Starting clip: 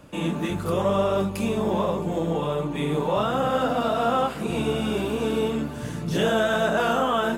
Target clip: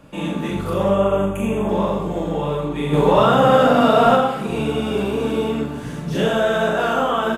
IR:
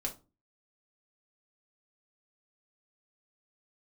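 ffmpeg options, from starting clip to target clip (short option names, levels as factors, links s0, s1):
-filter_complex "[0:a]asettb=1/sr,asplit=3[s0][s1][s2];[s0]atrim=end=0.904[s3];[s1]atrim=start=0.9:end=1.69,asetpts=PTS-STARTPTS,afade=t=in:d=0.004:c=qsin,afade=t=out:st=0.786:d=0.004:c=qsin,asuperstop=centerf=4600:order=12:qfactor=1.7[s4];[s2]atrim=start=1.686[s5];[s3][s4]acrossfade=d=0.004:c1=hsin:c2=qsin[s6];[s6][s5]acrossfade=d=0.004:c1=qsin:c2=hsin,asettb=1/sr,asplit=3[s7][s8][s9];[s7]atrim=end=2.934[s10];[s8]atrim=start=2.93:end=4.16,asetpts=PTS-STARTPTS,afade=t=in:d=0.004:c=qsin,afade=t=out:st=1.226:d=0.004:c=qsin,acontrast=72[s11];[s9]atrim=start=4.156[s12];[s10][s11]acrossfade=d=0.004:c1=hsin:c2=qsin[s13];[s13][s12]acrossfade=d=0.004:c1=qsin:c2=hsin,aecho=1:1:40|84|132.4|185.6|244.2:0.631|0.398|0.251|0.158|0.1,asplit=2[s14][s15];[1:a]atrim=start_sample=2205,lowpass=4600[s16];[s15][s16]afir=irnorm=-1:irlink=0,volume=0.473[s17];[s14][s17]amix=inputs=2:normalize=0,aresample=32000,aresample=44100,volume=0.794"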